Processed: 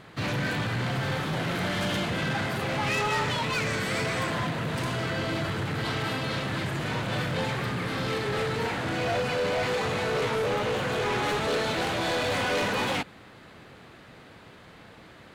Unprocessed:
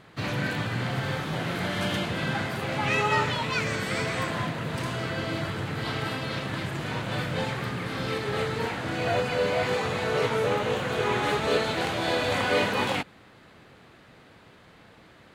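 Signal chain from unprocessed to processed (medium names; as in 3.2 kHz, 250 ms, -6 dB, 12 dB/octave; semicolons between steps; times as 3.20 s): saturation -27 dBFS, distortion -10 dB; trim +3.5 dB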